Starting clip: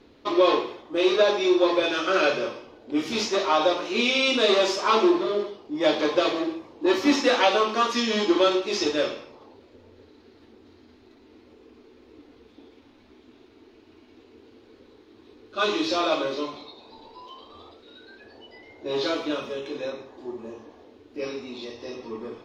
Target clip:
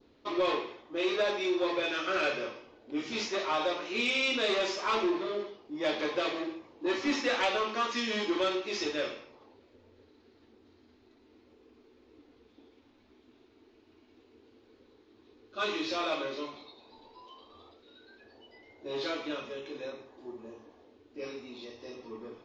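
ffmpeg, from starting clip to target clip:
ffmpeg -i in.wav -af "adynamicequalizer=threshold=0.01:dfrequency=2100:dqfactor=1.4:tfrequency=2100:tqfactor=1.4:attack=5:release=100:ratio=0.375:range=3:mode=boostabove:tftype=bell,aresample=16000,asoftclip=type=tanh:threshold=-12dB,aresample=44100,volume=-8.5dB" out.wav

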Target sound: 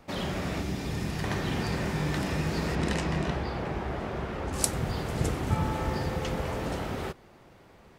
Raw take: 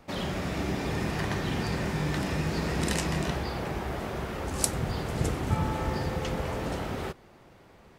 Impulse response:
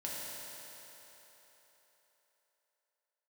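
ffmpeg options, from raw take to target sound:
-filter_complex "[0:a]asettb=1/sr,asplit=3[link_01][link_02][link_03];[link_01]atrim=end=0.594[link_04];[link_02]atrim=start=0.59:end=1.24,asetpts=PTS-STARTPTS,afade=type=in:duration=0.004:curve=qsin,afade=type=out:start_time=0.646:duration=0.004:curve=qsin,acrossover=split=260|3000[link_05][link_06][link_07];[link_06]acompressor=threshold=-38dB:ratio=6[link_08];[link_05][link_08][link_07]amix=inputs=3:normalize=0[link_09];[link_03]atrim=start=1.236[link_10];[link_04][link_09]acrossfade=duration=0.004:curve1=hsin:curve2=qsin[link_11];[link_11][link_10]acrossfade=duration=0.004:curve1=qsin:curve2=hsin,asettb=1/sr,asplit=3[link_12][link_13][link_14];[link_12]atrim=end=2.754[link_15];[link_13]atrim=start=2.75:end=4.53,asetpts=PTS-STARTPTS,afade=type=in:duration=0.004:curve=qsin,afade=type=out:start_time=1.776:duration=0.004:curve=qsin,aemphasis=mode=reproduction:type=50fm[link_16];[link_14]atrim=start=4.526[link_17];[link_15][link_16]acrossfade=duration=0.004:curve1=hsin:curve2=qsin[link_18];[link_18][link_17]acrossfade=duration=0.004:curve1=qsin:curve2=hsin"

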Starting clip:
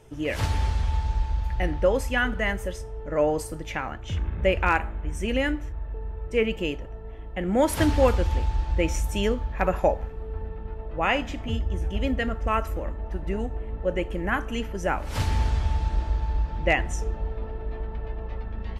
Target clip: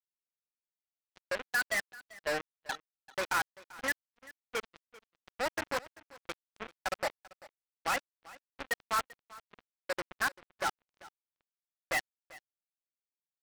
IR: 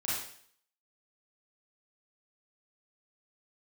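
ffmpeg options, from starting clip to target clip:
-filter_complex "[0:a]aemphasis=mode=reproduction:type=50kf,afftfilt=real='re*gte(hypot(re,im),0.141)':imag='im*gte(hypot(re,im),0.141)':win_size=1024:overlap=0.75,dynaudnorm=framelen=370:gausssize=11:maxgain=15.5dB,aresample=11025,asoftclip=type=tanh:threshold=-13dB,aresample=44100,atempo=1.4,bandpass=frequency=1600:width_type=q:width=1.2:csg=0,asoftclip=type=hard:threshold=-23.5dB,acrusher=bits=3:mix=0:aa=0.5,asplit=2[link_01][link_02];[link_02]aecho=0:1:390:0.0944[link_03];[link_01][link_03]amix=inputs=2:normalize=0"

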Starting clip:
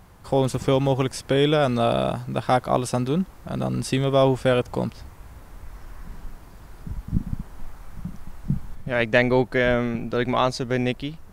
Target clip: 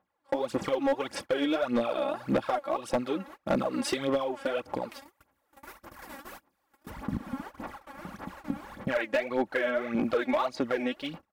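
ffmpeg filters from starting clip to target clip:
ffmpeg -i in.wav -filter_complex "[0:a]asettb=1/sr,asplit=3[link_01][link_02][link_03];[link_01]atrim=end=4.914[link_04];[link_02]atrim=start=4.91:end=6.9,asetpts=PTS-STARTPTS,afade=type=in:duration=0.004:curve=qsin,afade=type=out:start_time=1.986:duration=0.004:curve=qsin,aemphasis=mode=production:type=50kf[link_05];[link_03]atrim=start=6.896[link_06];[link_04][link_05]acrossfade=duration=0.004:curve1=hsin:curve2=qsin[link_07];[link_07][link_06]acrossfade=duration=0.004:curve1=qsin:curve2=hsin,agate=range=-32dB:threshold=-35dB:ratio=16:detection=peak,highpass=150,bass=frequency=250:gain=-11,treble=frequency=4000:gain=-11,aecho=1:1:3.6:0.49,acompressor=threshold=-33dB:ratio=12,aphaser=in_gain=1:out_gain=1:delay=3.7:decay=0.7:speed=1.7:type=sinusoidal,volume=25dB,asoftclip=hard,volume=-25dB,volume=5dB" out.wav

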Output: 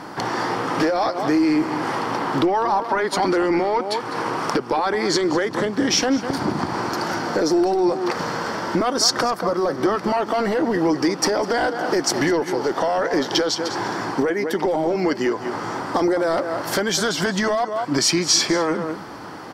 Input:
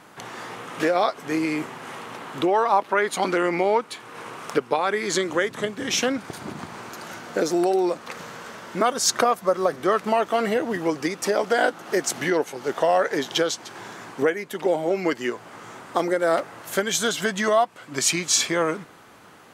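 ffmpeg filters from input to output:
ffmpeg -i in.wav -af "highshelf=frequency=3000:gain=-11,aecho=1:1:202:0.158,apsyclip=22dB,acompressor=threshold=-11dB:ratio=5,superequalizer=6b=1.58:9b=1.41:12b=0.708:14b=2.82,volume=-8.5dB" out.wav

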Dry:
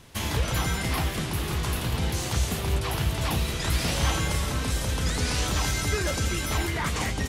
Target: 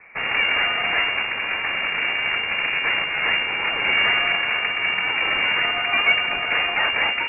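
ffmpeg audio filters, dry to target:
ffmpeg -i in.wav -af "highpass=frequency=530:width_type=q:width=3.7,aeval=exprs='0.251*(cos(1*acos(clip(val(0)/0.251,-1,1)))-cos(1*PI/2))+0.0447*(cos(8*acos(clip(val(0)/0.251,-1,1)))-cos(8*PI/2))':channel_layout=same,lowpass=frequency=2400:width_type=q:width=0.5098,lowpass=frequency=2400:width_type=q:width=0.6013,lowpass=frequency=2400:width_type=q:width=0.9,lowpass=frequency=2400:width_type=q:width=2.563,afreqshift=-2800,volume=5dB" out.wav

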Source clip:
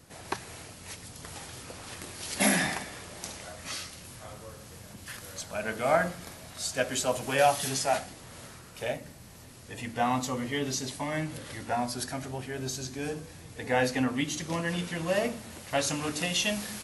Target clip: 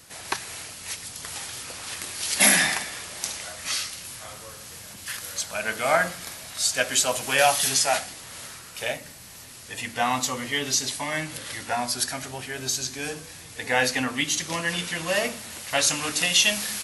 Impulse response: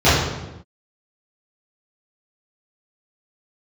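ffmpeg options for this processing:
-af "tiltshelf=frequency=940:gain=-6.5,volume=4dB"

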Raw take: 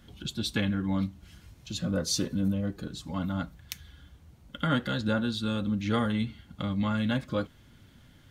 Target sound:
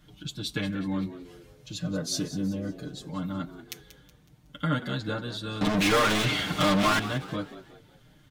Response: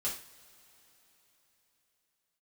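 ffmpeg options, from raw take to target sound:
-filter_complex "[0:a]asettb=1/sr,asplit=3[link_01][link_02][link_03];[link_01]atrim=end=5.614[link_04];[link_02]atrim=start=5.61:end=6.99,asetpts=PTS-STARTPTS,afade=type=in:duration=0.004:curve=qsin,afade=type=out:start_time=1.376:duration=0.004:curve=qsin,asplit=2[link_05][link_06];[link_06]highpass=frequency=720:poles=1,volume=40dB,asoftclip=type=tanh:threshold=-14.5dB[link_07];[link_05][link_07]amix=inputs=2:normalize=0,lowpass=frequency=5700:poles=1,volume=-6dB[link_08];[link_03]atrim=start=6.986[link_09];[link_04][link_08]acrossfade=duration=0.004:curve1=hsin:curve2=qsin[link_10];[link_10][link_09]acrossfade=duration=0.004:curve1=qsin:curve2=hsin,aecho=1:1:6.6:0.93,asplit=5[link_11][link_12][link_13][link_14][link_15];[link_12]adelay=185,afreqshift=77,volume=-14dB[link_16];[link_13]adelay=370,afreqshift=154,volume=-22dB[link_17];[link_14]adelay=555,afreqshift=231,volume=-29.9dB[link_18];[link_15]adelay=740,afreqshift=308,volume=-37.9dB[link_19];[link_11][link_16][link_17][link_18][link_19]amix=inputs=5:normalize=0,volume=-4dB"

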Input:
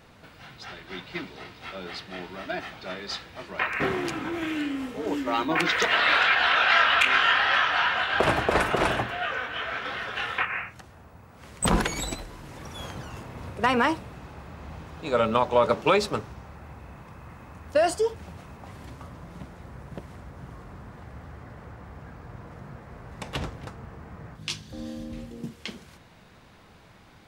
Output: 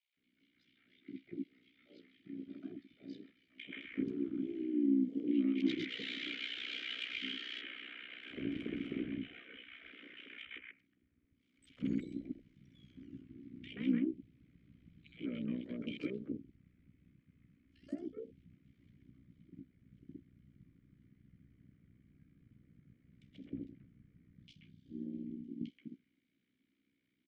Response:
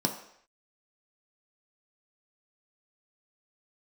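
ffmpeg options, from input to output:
-filter_complex "[0:a]afwtdn=0.0316,acrossover=split=490|3000[link_01][link_02][link_03];[link_02]acompressor=threshold=-45dB:ratio=2.5[link_04];[link_01][link_04][link_03]amix=inputs=3:normalize=0,asoftclip=type=tanh:threshold=-20.5dB,asplit=3[link_05][link_06][link_07];[link_05]bandpass=frequency=270:width_type=q:width=8,volume=0dB[link_08];[link_06]bandpass=frequency=2290:width_type=q:width=8,volume=-6dB[link_09];[link_07]bandpass=frequency=3010:width_type=q:width=8,volume=-9dB[link_10];[link_08][link_09][link_10]amix=inputs=3:normalize=0,tremolo=f=62:d=0.788,acrossover=split=640|2400[link_11][link_12][link_13];[link_12]adelay=130[link_14];[link_11]adelay=170[link_15];[link_15][link_14][link_13]amix=inputs=3:normalize=0,volume=7dB"

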